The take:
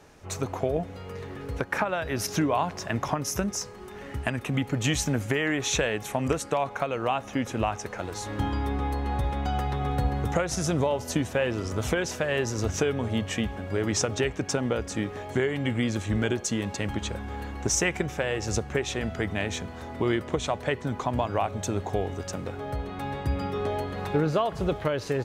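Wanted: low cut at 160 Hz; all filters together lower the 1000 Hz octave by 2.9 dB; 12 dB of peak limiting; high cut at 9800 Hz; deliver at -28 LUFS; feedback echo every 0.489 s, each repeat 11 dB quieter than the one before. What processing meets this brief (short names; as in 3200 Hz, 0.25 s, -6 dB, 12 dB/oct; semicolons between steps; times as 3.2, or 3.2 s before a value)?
HPF 160 Hz; LPF 9800 Hz; bell 1000 Hz -4 dB; limiter -23 dBFS; feedback echo 0.489 s, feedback 28%, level -11 dB; gain +5.5 dB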